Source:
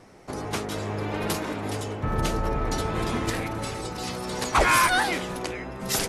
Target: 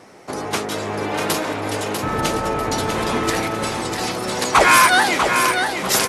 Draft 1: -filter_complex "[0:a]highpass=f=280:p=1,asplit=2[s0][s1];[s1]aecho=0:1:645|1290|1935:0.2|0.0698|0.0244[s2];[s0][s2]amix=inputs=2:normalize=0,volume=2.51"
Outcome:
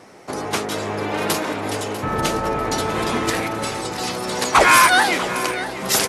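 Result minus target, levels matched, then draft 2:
echo-to-direct -8 dB
-filter_complex "[0:a]highpass=f=280:p=1,asplit=2[s0][s1];[s1]aecho=0:1:645|1290|1935|2580:0.501|0.175|0.0614|0.0215[s2];[s0][s2]amix=inputs=2:normalize=0,volume=2.51"

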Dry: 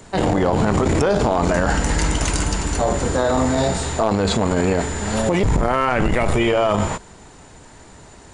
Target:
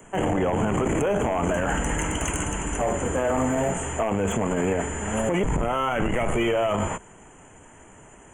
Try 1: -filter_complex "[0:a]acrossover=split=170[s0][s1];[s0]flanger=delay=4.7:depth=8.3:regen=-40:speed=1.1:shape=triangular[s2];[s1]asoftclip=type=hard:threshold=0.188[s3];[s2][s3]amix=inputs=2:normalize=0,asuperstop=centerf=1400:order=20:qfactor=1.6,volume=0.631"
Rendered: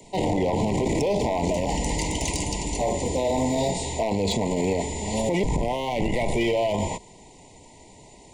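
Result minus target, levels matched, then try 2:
4 kHz band +5.0 dB
-filter_complex "[0:a]acrossover=split=170[s0][s1];[s0]flanger=delay=4.7:depth=8.3:regen=-40:speed=1.1:shape=triangular[s2];[s1]asoftclip=type=hard:threshold=0.188[s3];[s2][s3]amix=inputs=2:normalize=0,asuperstop=centerf=4500:order=20:qfactor=1.6,volume=0.631"

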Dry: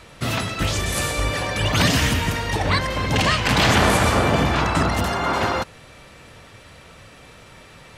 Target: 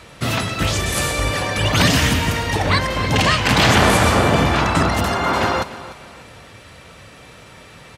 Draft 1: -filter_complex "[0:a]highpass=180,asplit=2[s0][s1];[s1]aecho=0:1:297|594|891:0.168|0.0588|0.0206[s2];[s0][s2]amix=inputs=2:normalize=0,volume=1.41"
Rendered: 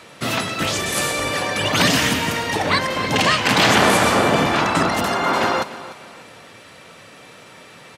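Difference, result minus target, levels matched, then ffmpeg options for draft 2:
125 Hz band -6.5 dB
-filter_complex "[0:a]highpass=47,asplit=2[s0][s1];[s1]aecho=0:1:297|594|891:0.168|0.0588|0.0206[s2];[s0][s2]amix=inputs=2:normalize=0,volume=1.41"

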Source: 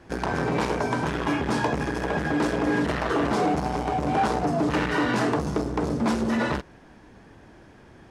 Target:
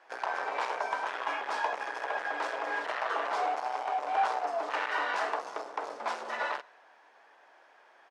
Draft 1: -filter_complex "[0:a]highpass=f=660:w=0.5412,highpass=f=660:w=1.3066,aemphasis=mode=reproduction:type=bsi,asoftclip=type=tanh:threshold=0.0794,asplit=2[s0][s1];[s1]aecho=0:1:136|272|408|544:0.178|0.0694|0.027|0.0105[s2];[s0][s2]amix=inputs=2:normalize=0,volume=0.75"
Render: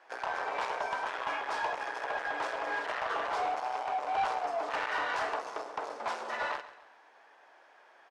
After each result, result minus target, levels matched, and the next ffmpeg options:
saturation: distortion +15 dB; echo-to-direct +11.5 dB
-filter_complex "[0:a]highpass=f=660:w=0.5412,highpass=f=660:w=1.3066,aemphasis=mode=reproduction:type=bsi,asoftclip=type=tanh:threshold=0.251,asplit=2[s0][s1];[s1]aecho=0:1:136|272|408|544:0.178|0.0694|0.027|0.0105[s2];[s0][s2]amix=inputs=2:normalize=0,volume=0.75"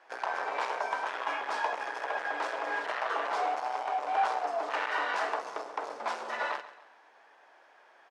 echo-to-direct +11.5 dB
-filter_complex "[0:a]highpass=f=660:w=0.5412,highpass=f=660:w=1.3066,aemphasis=mode=reproduction:type=bsi,asoftclip=type=tanh:threshold=0.251,asplit=2[s0][s1];[s1]aecho=0:1:136|272:0.0473|0.0185[s2];[s0][s2]amix=inputs=2:normalize=0,volume=0.75"

